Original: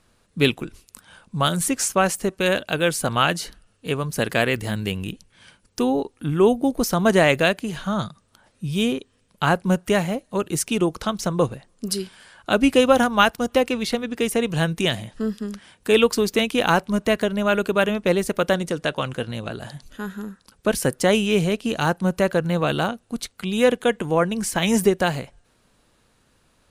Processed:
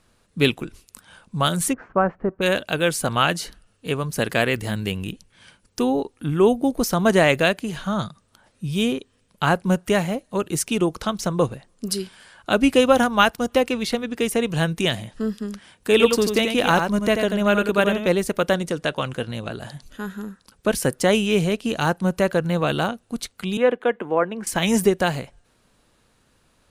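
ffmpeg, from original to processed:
-filter_complex "[0:a]asplit=3[a][b][c];[a]afade=t=out:st=1.72:d=0.02[d];[b]lowpass=f=1.5k:w=0.5412,lowpass=f=1.5k:w=1.3066,afade=t=in:st=1.72:d=0.02,afade=t=out:st=2.41:d=0.02[e];[c]afade=t=in:st=2.41:d=0.02[f];[d][e][f]amix=inputs=3:normalize=0,asettb=1/sr,asplit=3[g][h][i];[g]atrim=end=15.914[j];[h]atrim=start=15.91:end=18.07,asetpts=PTS-STARTPTS,afade=t=in:d=0.004:c=qsin,afade=t=out:st=2.156:d=0.004:c=qsin,aecho=1:1:88:0.501,atrim=end_sample=95256[k];[i]atrim=start=18.066[l];[j][k]acrossfade=d=0.004:c1=hsin:c2=qsin[m];[m][l]acrossfade=d=0.004:c1=qsin:c2=hsin,asettb=1/sr,asplit=3[n][o][p];[n]atrim=end=23.574[q];[o]atrim=start=23.57:end=24.47,asetpts=PTS-STARTPTS,afade=t=in:d=0.004:c=qsin,afade=t=out:st=0.896:d=0.004:c=qsin,acrossover=split=240 2600:gain=0.141 1 0.0794[r][s][t];[r][s][t]amix=inputs=3:normalize=0[u];[p]atrim=start=24.466[v];[q][u]acrossfade=d=0.004:c1=hsin:c2=qsin[w];[w][v]acrossfade=d=0.004:c1=qsin:c2=hsin"

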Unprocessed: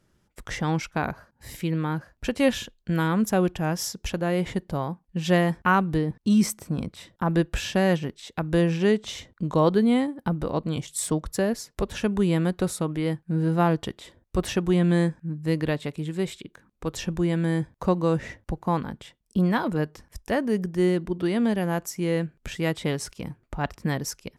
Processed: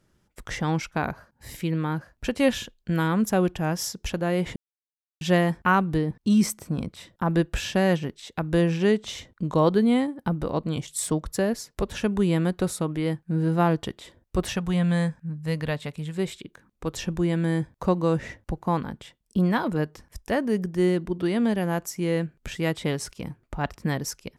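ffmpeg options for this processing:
-filter_complex "[0:a]asettb=1/sr,asplit=3[a][b][c];[a]atrim=end=14.484[d];[b]atrim=start=14.48:end=16.18,asetpts=PTS-STARTPTS,afade=t=in:d=0.004:c=qsin,afade=t=out:st=1.696:d=0.004:c=qsin,equalizer=f=340:t=o:w=0.46:g=-14[e];[c]atrim=start=16.176[f];[d][e]acrossfade=d=0.004:c1=hsin:c2=qsin[g];[g][f]acrossfade=d=0.004:c1=qsin:c2=hsin,asplit=3[h][i][j];[h]atrim=end=4.56,asetpts=PTS-STARTPTS,afade=t=out:st=4.556:d=0.004:c=hsin[k];[i]atrim=start=4.56:end=5.21,asetpts=PTS-STARTPTS,volume=0[l];[j]atrim=start=5.21,asetpts=PTS-STARTPTS,afade=t=in:d=0.004:c=hsin[m];[k][l][m]concat=n=3:v=0:a=1"

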